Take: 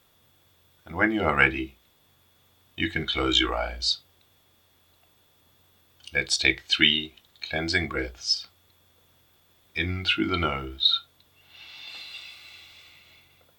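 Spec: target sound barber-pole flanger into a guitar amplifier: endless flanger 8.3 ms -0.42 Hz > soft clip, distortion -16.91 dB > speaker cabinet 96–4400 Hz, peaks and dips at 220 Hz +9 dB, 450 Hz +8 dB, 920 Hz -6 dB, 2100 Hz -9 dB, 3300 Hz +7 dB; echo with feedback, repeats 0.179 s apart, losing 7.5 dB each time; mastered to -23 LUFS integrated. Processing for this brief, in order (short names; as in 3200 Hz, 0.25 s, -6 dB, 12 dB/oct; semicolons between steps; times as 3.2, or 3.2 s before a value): feedback echo 0.179 s, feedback 42%, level -7.5 dB; endless flanger 8.3 ms -0.42 Hz; soft clip -17 dBFS; speaker cabinet 96–4400 Hz, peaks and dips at 220 Hz +9 dB, 450 Hz +8 dB, 920 Hz -6 dB, 2100 Hz -9 dB, 3300 Hz +7 dB; gain +4.5 dB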